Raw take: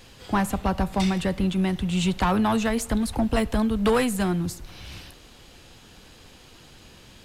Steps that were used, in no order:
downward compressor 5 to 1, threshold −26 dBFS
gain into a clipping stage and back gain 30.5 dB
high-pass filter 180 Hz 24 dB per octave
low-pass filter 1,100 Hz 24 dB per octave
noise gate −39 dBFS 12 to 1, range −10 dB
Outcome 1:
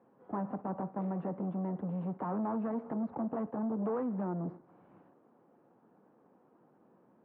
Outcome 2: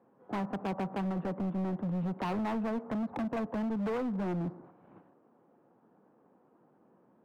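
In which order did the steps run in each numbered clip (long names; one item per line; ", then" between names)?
downward compressor, then gain into a clipping stage and back, then high-pass filter, then noise gate, then low-pass filter
low-pass filter, then noise gate, then high-pass filter, then downward compressor, then gain into a clipping stage and back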